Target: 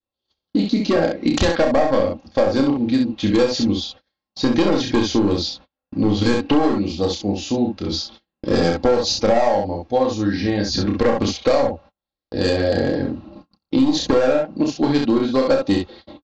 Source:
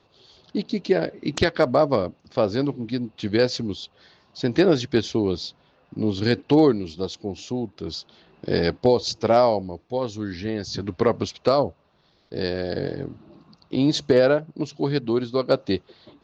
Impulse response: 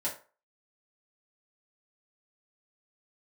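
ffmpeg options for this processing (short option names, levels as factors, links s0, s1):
-af "aresample=16000,volume=5.96,asoftclip=hard,volume=0.168,aresample=44100,aecho=1:1:30|65:0.668|0.562,agate=range=0.0126:threshold=0.00562:ratio=16:detection=peak,lowshelf=f=96:g=7.5,aecho=1:1:3.7:0.61,adynamicequalizer=threshold=0.0251:dfrequency=750:dqfactor=2.4:tfrequency=750:tqfactor=2.4:attack=5:release=100:ratio=0.375:range=3:mode=boostabove:tftype=bell,acompressor=threshold=0.126:ratio=6,volume=1.78"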